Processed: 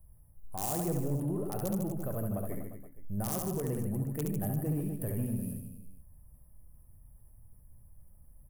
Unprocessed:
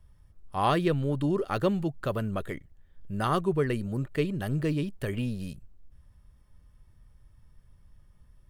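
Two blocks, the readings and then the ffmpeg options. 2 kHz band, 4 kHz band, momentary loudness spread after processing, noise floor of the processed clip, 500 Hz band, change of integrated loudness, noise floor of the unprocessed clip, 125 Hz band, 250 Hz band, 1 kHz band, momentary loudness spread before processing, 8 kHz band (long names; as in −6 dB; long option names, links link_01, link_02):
−16.0 dB, −12.0 dB, 11 LU, −58 dBFS, −8.0 dB, −5.0 dB, −60 dBFS, −3.0 dB, −4.5 dB, −11.5 dB, 11 LU, +10.5 dB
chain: -filter_complex "[0:a]flanger=delay=6.1:depth=3.5:regen=86:speed=0.46:shape=triangular,firequalizer=gain_entry='entry(250,0);entry(360,-3);entry(700,6);entry(3200,-19);entry(7000,-27);entry(11000,-7)':delay=0.05:min_phase=1,asplit=2[link_01][link_02];[link_02]aeval=exprs='(mod(10*val(0)+1,2)-1)/10':channel_layout=same,volume=-11.5dB[link_03];[link_01][link_03]amix=inputs=2:normalize=0,alimiter=level_in=0.5dB:limit=-24dB:level=0:latency=1:release=88,volume=-0.5dB,equalizer=frequency=1300:width_type=o:width=1.6:gain=-11.5,aexciter=amount=8.3:drive=6.9:freq=5700,aecho=1:1:70|150.5|243.1|349.5|472:0.631|0.398|0.251|0.158|0.1,asoftclip=type=tanh:threshold=-22.5dB,areverse,acompressor=mode=upward:threshold=-49dB:ratio=2.5,areverse"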